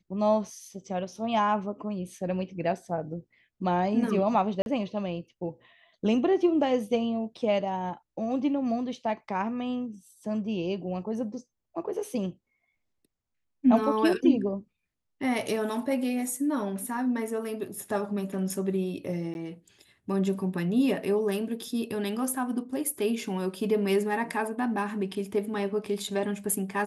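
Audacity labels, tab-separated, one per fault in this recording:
4.620000	4.660000	drop-out 41 ms
19.340000	19.350000	drop-out

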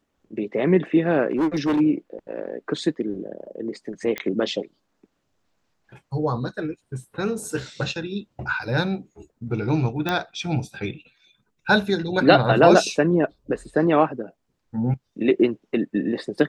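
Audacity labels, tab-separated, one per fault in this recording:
1.300000	1.810000	clipping −17.5 dBFS
4.180000	4.180000	click −13 dBFS
10.090000	10.090000	click −10 dBFS

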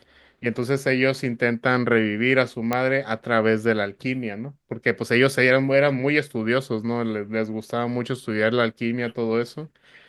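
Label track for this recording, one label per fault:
2.730000	2.730000	click −9 dBFS

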